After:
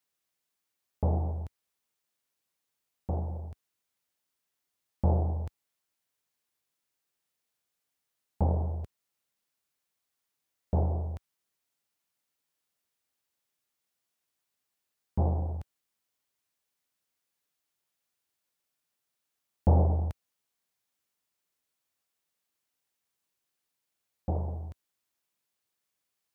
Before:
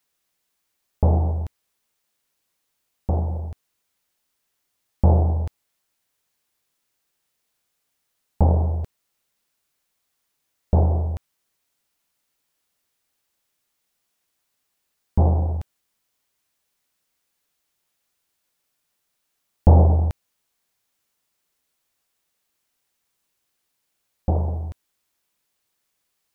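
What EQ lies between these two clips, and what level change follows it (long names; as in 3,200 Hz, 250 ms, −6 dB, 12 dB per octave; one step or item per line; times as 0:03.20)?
high-pass filter 62 Hz
−8.5 dB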